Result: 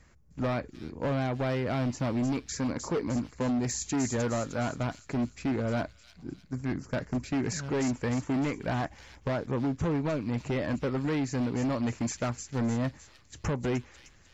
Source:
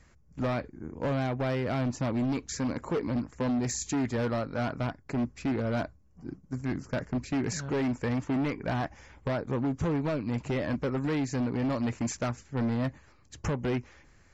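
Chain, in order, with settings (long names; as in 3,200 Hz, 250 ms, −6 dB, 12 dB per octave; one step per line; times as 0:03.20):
delay with a high-pass on its return 306 ms, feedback 47%, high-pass 4,500 Hz, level −3.5 dB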